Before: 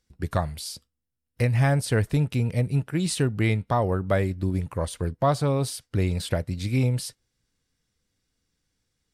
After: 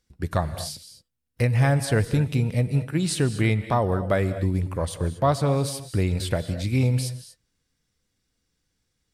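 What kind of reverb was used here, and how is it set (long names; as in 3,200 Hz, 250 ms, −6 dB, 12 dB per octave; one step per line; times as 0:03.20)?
reverb whose tail is shaped and stops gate 260 ms rising, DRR 11.5 dB
level +1 dB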